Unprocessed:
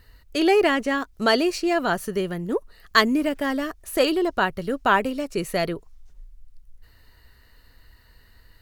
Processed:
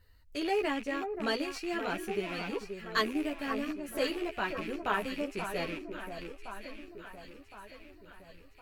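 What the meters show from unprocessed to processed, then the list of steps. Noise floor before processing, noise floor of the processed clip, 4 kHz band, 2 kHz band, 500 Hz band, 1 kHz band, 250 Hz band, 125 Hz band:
-55 dBFS, -56 dBFS, -10.5 dB, -10.5 dB, -11.5 dB, -11.0 dB, -11.0 dB, -11.5 dB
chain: rattle on loud lows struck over -42 dBFS, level -19 dBFS; echo whose repeats swap between lows and highs 532 ms, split 1.5 kHz, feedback 72%, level -7.5 dB; chorus voices 6, 0.35 Hz, delay 12 ms, depth 2.3 ms; trim -9 dB

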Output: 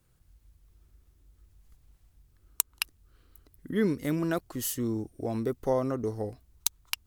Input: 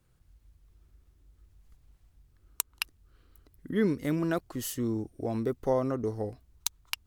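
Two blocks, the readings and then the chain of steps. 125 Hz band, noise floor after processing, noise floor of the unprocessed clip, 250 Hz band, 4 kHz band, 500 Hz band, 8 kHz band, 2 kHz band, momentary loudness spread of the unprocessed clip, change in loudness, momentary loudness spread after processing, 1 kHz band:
0.0 dB, -66 dBFS, -66 dBFS, 0.0 dB, +1.5 dB, 0.0 dB, +3.5 dB, +0.5 dB, 8 LU, +1.0 dB, 6 LU, 0.0 dB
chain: treble shelf 6.5 kHz +6 dB

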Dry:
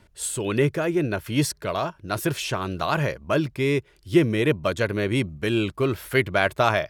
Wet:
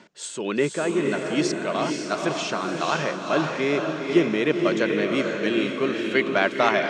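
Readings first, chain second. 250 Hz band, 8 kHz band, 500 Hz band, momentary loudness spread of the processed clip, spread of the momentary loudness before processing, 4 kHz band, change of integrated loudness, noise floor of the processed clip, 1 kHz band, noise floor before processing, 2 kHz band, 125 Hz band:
+1.0 dB, -2.5 dB, +1.0 dB, 5 LU, 7 LU, +1.0 dB, +0.5 dB, -36 dBFS, +1.0 dB, -58 dBFS, +1.5 dB, -8.5 dB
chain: elliptic band-pass 190–6800 Hz, stop band 40 dB; reverse; upward compressor, threshold -29 dBFS; reverse; echo that smears into a reverb 503 ms, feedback 46%, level -3 dB

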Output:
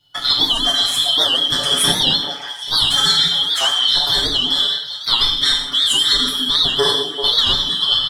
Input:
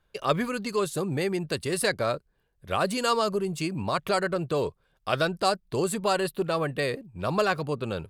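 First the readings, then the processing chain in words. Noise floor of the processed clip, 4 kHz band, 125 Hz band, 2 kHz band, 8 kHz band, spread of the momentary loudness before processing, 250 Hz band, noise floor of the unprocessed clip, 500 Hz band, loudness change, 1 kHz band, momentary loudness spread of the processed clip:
-30 dBFS, +25.5 dB, -1.0 dB, +5.5 dB, +13.0 dB, 6 LU, -0.5 dB, -71 dBFS, -2.0 dB, +13.5 dB, +2.5 dB, 4 LU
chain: four frequency bands reordered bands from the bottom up 2413; comb 7 ms, depth 93%; compression, threshold -24 dBFS, peak gain reduction 8.5 dB; on a send: repeats whose band climbs or falls 195 ms, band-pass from 240 Hz, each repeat 1.4 oct, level -1 dB; on the sum: gated-style reverb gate 230 ms falling, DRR -3 dB; in parallel at -11 dB: hysteresis with a dead band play -40 dBFS; on the sum: warped record 78 rpm, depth 160 cents; trim +6 dB

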